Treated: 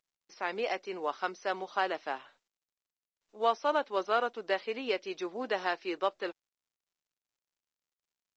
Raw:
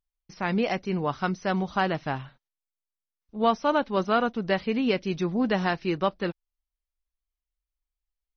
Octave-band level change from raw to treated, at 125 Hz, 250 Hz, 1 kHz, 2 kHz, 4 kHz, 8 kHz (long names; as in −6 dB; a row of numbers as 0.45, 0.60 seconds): below −25 dB, −15.5 dB, −4.5 dB, −4.5 dB, −4.5 dB, can't be measured